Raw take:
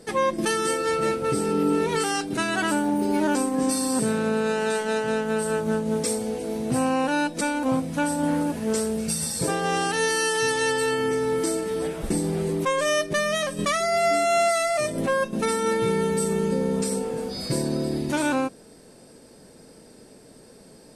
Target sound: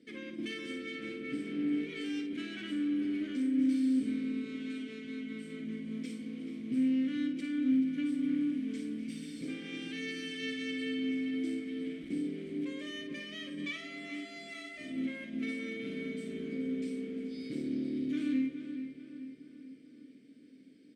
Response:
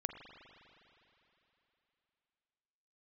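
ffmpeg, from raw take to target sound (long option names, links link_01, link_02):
-filter_complex "[0:a]asettb=1/sr,asplit=3[link_01][link_02][link_03];[link_01]atrim=end=12.214[link_04];[link_02]atrim=start=12.21:end=12.89,asetpts=PTS-STARTPTS,afade=type=in:duration=0.004:curve=qsin,afade=type=out:start_time=0.676:duration=0.004:curve=qsin,highpass=170[link_05];[link_03]atrim=start=12.886[link_06];[link_04][link_05]acrossfade=duration=0.004:curve1=hsin:curve2=qsin[link_07];[link_07][link_06]acrossfade=duration=0.004:curve1=qsin:curve2=hsin,aeval=exprs='clip(val(0),-1,0.0299)':channel_layout=same,asplit=3[link_08][link_09][link_10];[link_08]bandpass=frequency=270:width_type=q:width=8,volume=0dB[link_11];[link_09]bandpass=frequency=2290:width_type=q:width=8,volume=-6dB[link_12];[link_10]bandpass=frequency=3010:width_type=q:width=8,volume=-9dB[link_13];[link_11][link_12][link_13]amix=inputs=3:normalize=0,asplit=2[link_14][link_15];[link_15]adelay=431,lowpass=frequency=3600:poles=1,volume=-10dB,asplit=2[link_16][link_17];[link_17]adelay=431,lowpass=frequency=3600:poles=1,volume=0.55,asplit=2[link_18][link_19];[link_19]adelay=431,lowpass=frequency=3600:poles=1,volume=0.55,asplit=2[link_20][link_21];[link_21]adelay=431,lowpass=frequency=3600:poles=1,volume=0.55,asplit=2[link_22][link_23];[link_23]adelay=431,lowpass=frequency=3600:poles=1,volume=0.55,asplit=2[link_24][link_25];[link_25]adelay=431,lowpass=frequency=3600:poles=1,volume=0.55[link_26];[link_14][link_16][link_18][link_20][link_22][link_24][link_26]amix=inputs=7:normalize=0,asplit=2[link_27][link_28];[1:a]atrim=start_sample=2205,adelay=54[link_29];[link_28][link_29]afir=irnorm=-1:irlink=0,volume=-6dB[link_30];[link_27][link_30]amix=inputs=2:normalize=0"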